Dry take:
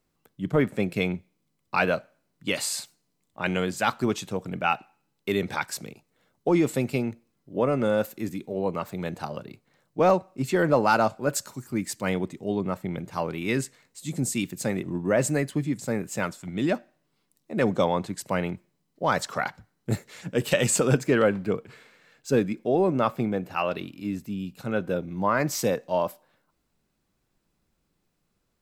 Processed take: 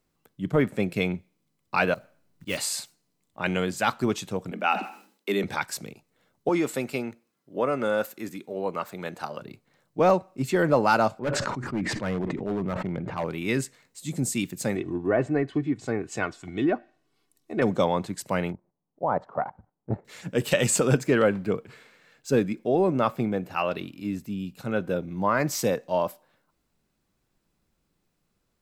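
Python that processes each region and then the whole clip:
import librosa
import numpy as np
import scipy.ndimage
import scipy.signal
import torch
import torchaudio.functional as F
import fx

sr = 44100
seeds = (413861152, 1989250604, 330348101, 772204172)

y = fx.chain(x, sr, fx.block_float(bits=5),
    fx.low_shelf(hz=110.0, db=11.0),
    fx.auto_swell(attack_ms=111.0), at=(1.94, 2.57))
y = fx.chain(y, sr, fx.steep_highpass(hz=190.0, slope=96),
    fx.sustainer(db_per_s=110.0), at=(4.51, 5.44))
y = fx.chain(y, sr, fx.highpass(hz=350.0, slope=6),
    fx.peak_eq(hz=1400.0, db=3.5, octaves=0.65), at=(6.49, 9.42))
y = fx.chain(y, sr, fx.lowpass(hz=2000.0, slope=12),
    fx.clip_hard(threshold_db=-23.0),
    fx.sustainer(db_per_s=22.0), at=(11.19, 13.25))
y = fx.chain(y, sr, fx.env_lowpass_down(base_hz=1700.0, full_db=-21.0),
    fx.comb(ms=2.7, depth=0.54), at=(14.75, 17.62))
y = fx.chain(y, sr, fx.lowpass_res(hz=840.0, q=2.0),
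    fx.level_steps(step_db=12), at=(18.52, 20.05))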